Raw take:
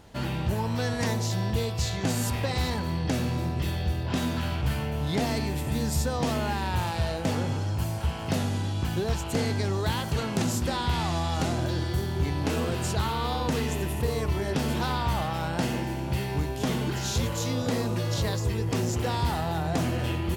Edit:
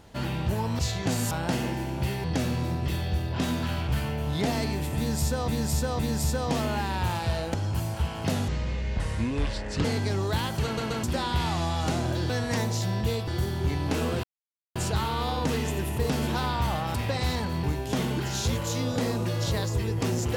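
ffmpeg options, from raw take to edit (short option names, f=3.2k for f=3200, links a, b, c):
-filter_complex "[0:a]asplit=18[a][b][c][d][e][f][g][h][i][j][k][l][m][n][o][p][q][r];[a]atrim=end=0.792[s];[b]atrim=start=1.768:end=2.292[t];[c]atrim=start=15.408:end=16.342[u];[d]atrim=start=2.978:end=6.222[v];[e]atrim=start=5.708:end=6.222[w];[f]atrim=start=5.708:end=7.262[x];[g]atrim=start=7.578:end=8.524[y];[h]atrim=start=8.52:end=9.38,asetpts=PTS-STARTPTS,asetrate=27783,aresample=44100[z];[i]atrim=start=9.376:end=10.312[aa];[j]atrim=start=10.178:end=10.312[ab];[k]atrim=start=10.178:end=10.312[ac];[l]atrim=start=10.568:end=11.832[ad];[m]atrim=start=0.788:end=1.772[ae];[n]atrim=start=11.828:end=12.79,asetpts=PTS-STARTPTS,afade=t=out:st=0.958:d=0.004:c=hsin,apad=pad_dur=0.52[af];[o]atrim=start=12.79:end=14.132,asetpts=PTS-STARTPTS,afade=t=in:d=0.004:c=hsin[ag];[p]atrim=start=14.558:end=15.412[ah];[q]atrim=start=2.288:end=2.982[ai];[r]atrim=start=16.338[aj];[s][t]acrossfade=d=0.004:c1=hsin:c2=hsin[ak];[ak][u]acrossfade=d=0.004:c1=hsin:c2=hsin[al];[al][v]acrossfade=d=0.004:c1=hsin:c2=hsin[am];[am][w]acrossfade=d=0.004:c1=hsin:c2=hsin[an];[an][x]acrossfade=d=0.004:c1=hsin:c2=hsin[ao];[ao][y]acrossfade=d=0.004:c1=hsin:c2=hsin[ap];[ap][z]acrossfade=d=0.004:c1=hsin:c2=hsin[aq];[aq][aa]acrossfade=d=0.004:c1=hsin:c2=hsin[ar];[ar][ab]acrossfade=d=0.004:c1=hsin:c2=hsin[as];[as][ac]acrossfade=d=0.004:c1=hsin:c2=hsin[at];[at][ad]acrossfade=d=0.004:c1=hsin:c2=hsin[au];[au][ae]acrossfade=d=0.004:c1=hsin:c2=hsin[av];[af][ag]concat=n=2:v=0:a=1[aw];[av][aw]acrossfade=d=0.004:c1=hsin:c2=hsin[ax];[ax][ah]acrossfade=d=0.004:c1=hsin:c2=hsin[ay];[ay][ai]acrossfade=d=0.004:c1=hsin:c2=hsin[az];[az][aj]acrossfade=d=0.004:c1=hsin:c2=hsin"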